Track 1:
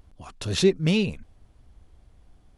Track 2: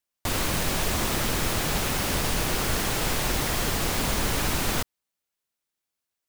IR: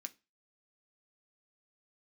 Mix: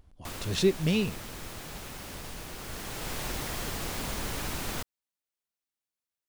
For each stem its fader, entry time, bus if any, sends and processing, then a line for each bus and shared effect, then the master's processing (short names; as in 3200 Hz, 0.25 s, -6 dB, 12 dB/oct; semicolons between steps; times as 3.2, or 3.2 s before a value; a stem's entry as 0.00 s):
-4.5 dB, 0.00 s, no send, dry
-8.5 dB, 0.00 s, no send, auto duck -7 dB, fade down 0.50 s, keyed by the first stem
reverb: off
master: dry